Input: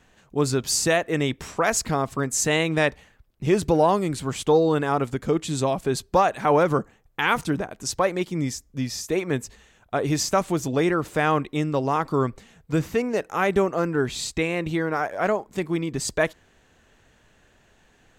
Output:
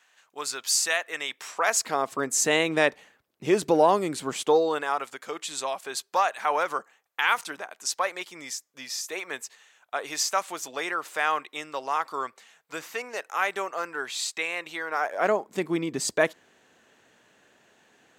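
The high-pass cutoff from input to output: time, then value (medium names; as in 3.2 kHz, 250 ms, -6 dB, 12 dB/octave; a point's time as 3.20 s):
1.31 s 1.1 kHz
2.32 s 290 Hz
4.32 s 290 Hz
4.98 s 900 Hz
14.86 s 900 Hz
15.37 s 230 Hz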